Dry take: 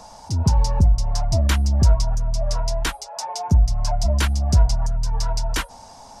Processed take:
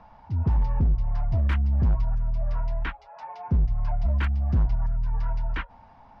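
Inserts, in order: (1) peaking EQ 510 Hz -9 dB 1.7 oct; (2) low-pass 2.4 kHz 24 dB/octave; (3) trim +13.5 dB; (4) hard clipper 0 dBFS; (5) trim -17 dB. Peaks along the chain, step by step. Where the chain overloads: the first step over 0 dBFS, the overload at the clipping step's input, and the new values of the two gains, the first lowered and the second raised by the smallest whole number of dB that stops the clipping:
-7.5 dBFS, -7.5 dBFS, +6.0 dBFS, 0.0 dBFS, -17.0 dBFS; step 3, 6.0 dB; step 3 +7.5 dB, step 5 -11 dB

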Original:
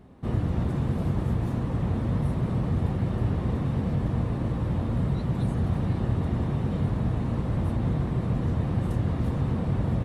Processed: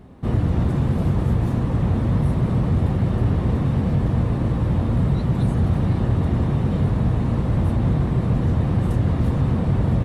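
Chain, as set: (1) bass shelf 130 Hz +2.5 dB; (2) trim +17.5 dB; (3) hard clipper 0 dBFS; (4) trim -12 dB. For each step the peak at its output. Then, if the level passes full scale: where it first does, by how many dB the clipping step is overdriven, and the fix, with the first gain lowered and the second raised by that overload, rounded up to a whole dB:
-12.5 dBFS, +5.0 dBFS, 0.0 dBFS, -12.0 dBFS; step 2, 5.0 dB; step 2 +12.5 dB, step 4 -7 dB

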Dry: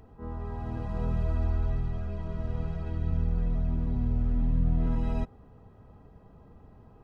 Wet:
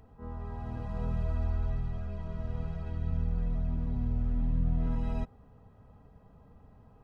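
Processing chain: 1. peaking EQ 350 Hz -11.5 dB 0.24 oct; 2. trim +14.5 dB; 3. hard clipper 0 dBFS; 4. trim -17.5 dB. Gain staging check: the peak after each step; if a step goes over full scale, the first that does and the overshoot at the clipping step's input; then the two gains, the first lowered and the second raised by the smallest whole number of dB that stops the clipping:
-16.0 dBFS, -1.5 dBFS, -1.5 dBFS, -19.0 dBFS; nothing clips

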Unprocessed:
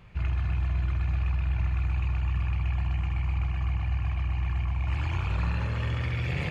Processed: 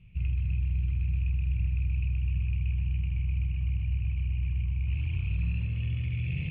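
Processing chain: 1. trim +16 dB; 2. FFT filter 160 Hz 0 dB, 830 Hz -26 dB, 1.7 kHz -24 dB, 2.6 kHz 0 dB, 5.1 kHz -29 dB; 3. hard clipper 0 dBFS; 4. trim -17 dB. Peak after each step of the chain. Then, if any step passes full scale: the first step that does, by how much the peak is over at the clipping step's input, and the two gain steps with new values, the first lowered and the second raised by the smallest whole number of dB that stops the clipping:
-2.0 dBFS, -2.5 dBFS, -2.5 dBFS, -19.5 dBFS; nothing clips

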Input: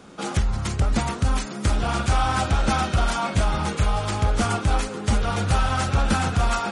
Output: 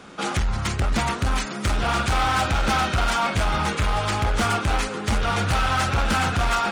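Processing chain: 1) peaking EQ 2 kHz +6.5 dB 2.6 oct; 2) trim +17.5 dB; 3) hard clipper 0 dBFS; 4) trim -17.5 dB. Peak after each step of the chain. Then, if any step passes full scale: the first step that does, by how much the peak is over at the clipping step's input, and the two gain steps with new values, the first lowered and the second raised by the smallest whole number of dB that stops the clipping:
-7.5 dBFS, +10.0 dBFS, 0.0 dBFS, -17.5 dBFS; step 2, 10.0 dB; step 2 +7.5 dB, step 4 -7.5 dB

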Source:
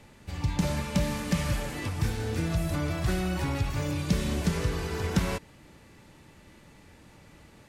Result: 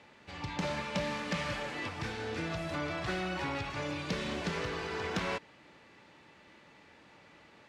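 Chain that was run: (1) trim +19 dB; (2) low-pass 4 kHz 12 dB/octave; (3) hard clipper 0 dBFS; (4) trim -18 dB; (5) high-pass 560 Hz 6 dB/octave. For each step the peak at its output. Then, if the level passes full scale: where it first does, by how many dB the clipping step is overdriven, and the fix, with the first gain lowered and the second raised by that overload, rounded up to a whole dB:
+6.0 dBFS, +6.0 dBFS, 0.0 dBFS, -18.0 dBFS, -21.0 dBFS; step 1, 6.0 dB; step 1 +13 dB, step 4 -12 dB

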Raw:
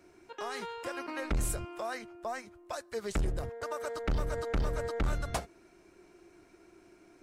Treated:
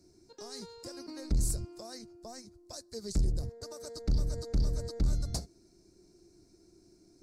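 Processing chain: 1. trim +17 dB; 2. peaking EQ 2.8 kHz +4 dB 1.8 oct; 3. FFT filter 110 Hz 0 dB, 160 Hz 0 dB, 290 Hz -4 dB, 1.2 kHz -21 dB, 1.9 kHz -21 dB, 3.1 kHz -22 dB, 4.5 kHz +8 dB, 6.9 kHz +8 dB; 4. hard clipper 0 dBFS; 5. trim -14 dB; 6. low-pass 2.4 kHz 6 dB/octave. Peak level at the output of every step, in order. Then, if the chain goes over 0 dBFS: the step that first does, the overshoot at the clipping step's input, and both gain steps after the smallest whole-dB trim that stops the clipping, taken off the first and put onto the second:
-4.5 dBFS, -2.0 dBFS, +3.0 dBFS, 0.0 dBFS, -14.0 dBFS, -20.0 dBFS; step 3, 3.0 dB; step 1 +14 dB, step 5 -11 dB

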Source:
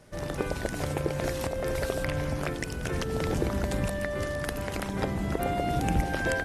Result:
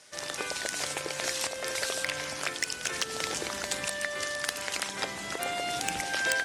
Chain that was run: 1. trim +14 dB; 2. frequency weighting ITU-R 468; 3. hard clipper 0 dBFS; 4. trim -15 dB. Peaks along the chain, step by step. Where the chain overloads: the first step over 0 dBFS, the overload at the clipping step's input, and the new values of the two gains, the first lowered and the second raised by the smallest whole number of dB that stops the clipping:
+0.5 dBFS, +9.0 dBFS, 0.0 dBFS, -15.0 dBFS; step 1, 9.0 dB; step 1 +5 dB, step 4 -6 dB

